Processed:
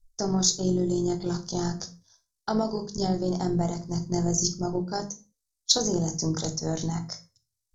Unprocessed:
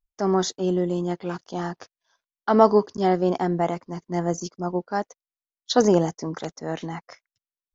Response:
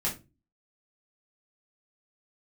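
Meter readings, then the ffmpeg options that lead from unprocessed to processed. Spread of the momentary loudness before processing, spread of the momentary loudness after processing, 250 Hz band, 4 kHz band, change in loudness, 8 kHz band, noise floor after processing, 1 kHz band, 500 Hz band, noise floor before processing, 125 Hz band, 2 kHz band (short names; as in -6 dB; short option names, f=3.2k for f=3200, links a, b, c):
15 LU, 14 LU, -2.5 dB, +5.5 dB, -3.0 dB, n/a, -83 dBFS, -9.5 dB, -8.0 dB, under -85 dBFS, +1.5 dB, -9.5 dB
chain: -filter_complex "[0:a]tremolo=f=49:d=0.462,acompressor=threshold=-25dB:ratio=6,aexciter=amount=15.8:drive=9:freq=4.3k,aemphasis=mode=reproduction:type=riaa,asplit=2[a][b];[1:a]atrim=start_sample=2205,afade=t=out:st=0.28:d=0.01,atrim=end_sample=12789,asetrate=34398,aresample=44100[c];[b][c]afir=irnorm=-1:irlink=0,volume=-12dB[d];[a][d]amix=inputs=2:normalize=0,volume=-4.5dB"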